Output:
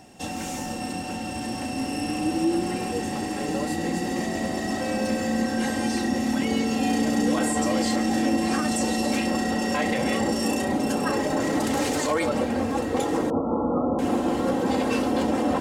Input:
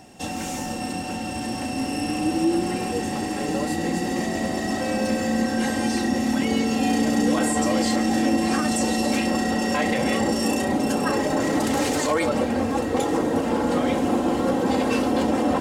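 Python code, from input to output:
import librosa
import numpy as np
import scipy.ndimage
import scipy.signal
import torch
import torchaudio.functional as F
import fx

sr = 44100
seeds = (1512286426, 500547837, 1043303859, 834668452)

y = fx.brickwall_lowpass(x, sr, high_hz=1400.0, at=(13.3, 13.99))
y = y * librosa.db_to_amplitude(-2.0)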